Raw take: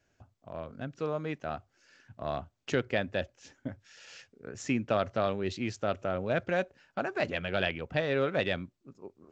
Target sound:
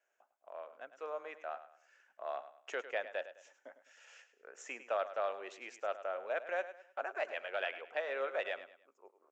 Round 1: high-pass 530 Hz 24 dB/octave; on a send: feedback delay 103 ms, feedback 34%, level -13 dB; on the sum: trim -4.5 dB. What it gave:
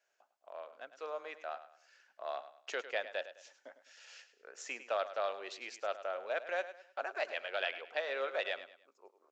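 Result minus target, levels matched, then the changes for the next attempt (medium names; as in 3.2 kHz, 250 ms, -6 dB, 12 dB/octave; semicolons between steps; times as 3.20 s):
4 kHz band +5.5 dB
add after high-pass: peaking EQ 4.4 kHz -14 dB 0.76 oct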